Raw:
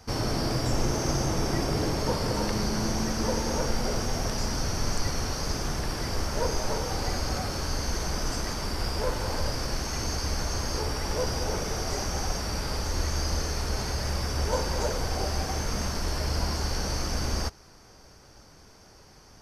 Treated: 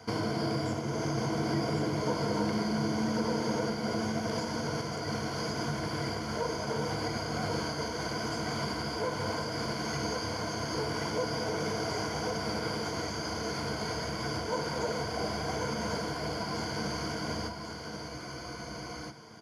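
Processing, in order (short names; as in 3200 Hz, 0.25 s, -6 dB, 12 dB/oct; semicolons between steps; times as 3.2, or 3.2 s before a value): in parallel at -9 dB: soft clip -25.5 dBFS, distortion -13 dB; on the sum: ripple EQ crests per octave 1.8, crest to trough 11 dB; compressor, threshold -26 dBFS, peak gain reduction 9.5 dB; HPF 110 Hz 24 dB/oct; high shelf 4200 Hz -9.5 dB; on a send: echo 1.09 s -5.5 dB; on the sum: spectral freeze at 18.12, 0.99 s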